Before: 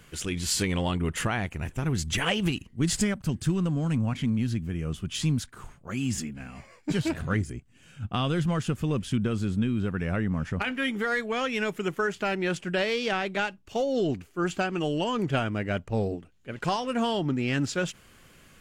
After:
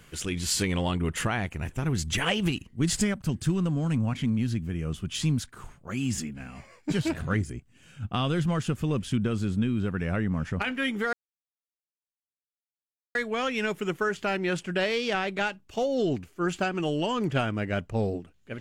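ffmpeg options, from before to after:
-filter_complex "[0:a]asplit=2[s0][s1];[s0]atrim=end=11.13,asetpts=PTS-STARTPTS,afade=t=out:st=11.126:d=0.004:c=hsin,apad=pad_dur=2.02[s2];[s1]atrim=start=11.13,asetpts=PTS-STARTPTS,afade=t=in:d=0.004:c=hsin[s3];[s2][s3]concat=n=2:v=0:a=1"

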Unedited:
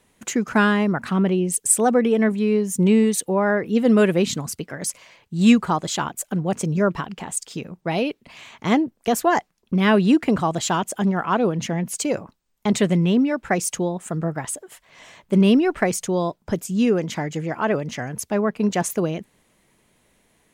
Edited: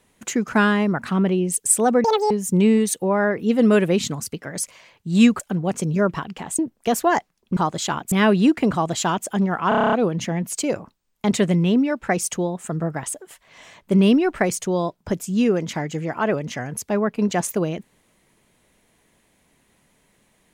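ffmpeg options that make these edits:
-filter_complex "[0:a]asplit=15[s0][s1][s2][s3][s4][s5][s6][s7][s8][s9][s10][s11][s12][s13][s14];[s0]atrim=end=2.044[s15];[s1]atrim=start=2.04:end=2.57,asetpts=PTS-STARTPTS,asetrate=87759,aresample=44100,atrim=end_sample=11745,asetpts=PTS-STARTPTS[s16];[s2]atrim=start=2.566:end=5.662[s17];[s3]atrim=start=6.208:end=7.402[s18];[s4]atrim=start=8.788:end=9.772[s19];[s5]atrim=start=5.658:end=6.212[s20];[s6]atrim=start=9.768:end=11.372[s21];[s7]atrim=start=11.338:end=11.372[s22];[s8]atrim=start=11.338:end=11.372[s23];[s9]atrim=start=11.338:end=11.372[s24];[s10]atrim=start=11.338:end=11.372[s25];[s11]atrim=start=11.338:end=11.372[s26];[s12]atrim=start=11.338:end=11.372[s27];[s13]atrim=start=11.338:end=11.372[s28];[s14]atrim=start=11.338[s29];[s15][s16]acrossfade=d=0.004:c1=hsin:c2=hsin[s30];[s30][s17]acrossfade=d=0.004:c1=hsin:c2=hsin[s31];[s31][s18]acrossfade=d=0.004:c1=hsin:c2=hsin[s32];[s32][s19]acrossfade=d=0.004:c1=hsin:c2=hsin[s33];[s33][s20]acrossfade=d=0.004:c1=hsin:c2=hsin[s34];[s34][s21]acrossfade=d=0.004:c1=hsin:c2=hsin[s35];[s35][s22]acrossfade=d=0.004:c1=hsin:c2=hsin[s36];[s36][s23]acrossfade=d=0.004:c1=hsin:c2=hsin[s37];[s37][s24]acrossfade=d=0.004:c1=hsin:c2=hsin[s38];[s38][s25]acrossfade=d=0.004:c1=hsin:c2=hsin[s39];[s39][s26]acrossfade=d=0.004:c1=hsin:c2=hsin[s40];[s40][s27]acrossfade=d=0.004:c1=hsin:c2=hsin[s41];[s41][s28]acrossfade=d=0.004:c1=hsin:c2=hsin[s42];[s42][s29]acrossfade=d=0.004:c1=hsin:c2=hsin"

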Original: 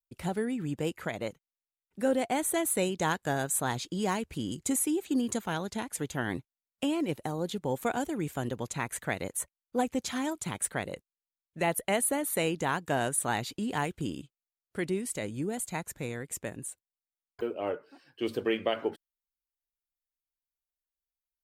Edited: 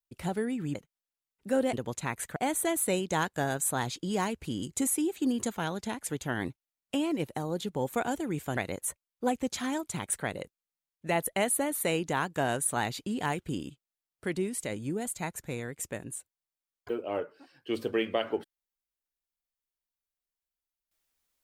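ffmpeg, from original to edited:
-filter_complex "[0:a]asplit=5[s0][s1][s2][s3][s4];[s0]atrim=end=0.752[s5];[s1]atrim=start=1.268:end=2.252[s6];[s2]atrim=start=8.458:end=9.092[s7];[s3]atrim=start=2.248:end=8.462[s8];[s4]atrim=start=9.088[s9];[s5][s6]acrossfade=d=0.004:c1=hsin:c2=hsin[s10];[s10][s7]acrossfade=d=0.004:c1=hsin:c2=hsin[s11];[s11][s8]acrossfade=d=0.004:c1=hsin:c2=hsin[s12];[s12][s9]acrossfade=d=0.004:c1=hsin:c2=hsin"

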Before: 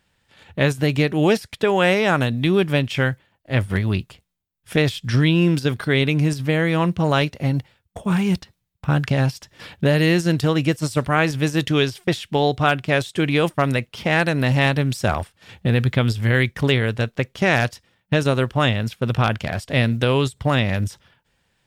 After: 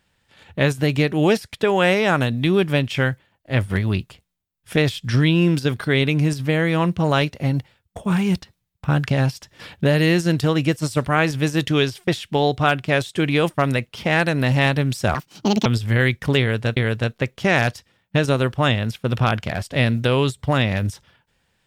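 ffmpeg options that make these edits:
-filter_complex "[0:a]asplit=4[s0][s1][s2][s3];[s0]atrim=end=15.154[s4];[s1]atrim=start=15.15:end=16,asetpts=PTS-STARTPTS,asetrate=74088,aresample=44100,atrim=end_sample=22312,asetpts=PTS-STARTPTS[s5];[s2]atrim=start=15.996:end=17.112[s6];[s3]atrim=start=16.738[s7];[s4][s5]acrossfade=d=0.004:c1=hsin:c2=hsin[s8];[s8][s6]acrossfade=d=0.004:c1=hsin:c2=hsin[s9];[s9][s7]acrossfade=d=0.004:c1=hsin:c2=hsin"

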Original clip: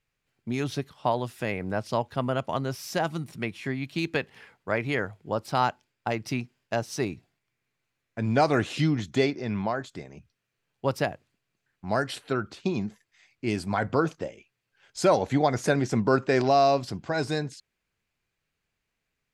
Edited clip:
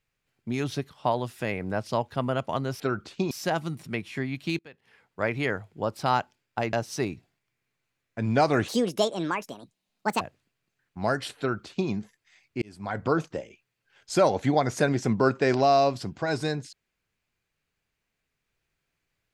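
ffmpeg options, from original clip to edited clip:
-filter_complex "[0:a]asplit=8[s0][s1][s2][s3][s4][s5][s6][s7];[s0]atrim=end=2.802[s8];[s1]atrim=start=12.258:end=12.772[s9];[s2]atrim=start=2.798:end=4.08,asetpts=PTS-STARTPTS,afade=t=out:st=1.278:d=0.004:c=hsin:silence=0.0749894[s10];[s3]atrim=start=4.08:end=6.222,asetpts=PTS-STARTPTS,afade=t=in:d=0.65:c=qua:silence=0.0749894[s11];[s4]atrim=start=6.728:end=8.684[s12];[s5]atrim=start=8.68:end=11.08,asetpts=PTS-STARTPTS,asetrate=69237,aresample=44100,atrim=end_sample=67414,asetpts=PTS-STARTPTS[s13];[s6]atrim=start=11.076:end=13.49,asetpts=PTS-STARTPTS,afade=t=out:st=2.41:d=0.004:c=hsin[s14];[s7]atrim=start=13.49,asetpts=PTS-STARTPTS,afade=t=in:d=0.53[s15];[s8][s9]acrossfade=d=0.004:c1=hsin:c2=hsin[s16];[s10][s11]concat=n=2:v=0:a=1[s17];[s16][s17]acrossfade=d=0.004:c1=hsin:c2=hsin[s18];[s18][s12]acrossfade=d=0.004:c1=hsin:c2=hsin[s19];[s19][s13]acrossfade=d=0.004:c1=hsin:c2=hsin[s20];[s14][s15]concat=n=2:v=0:a=1[s21];[s20][s21]acrossfade=d=0.004:c1=hsin:c2=hsin"

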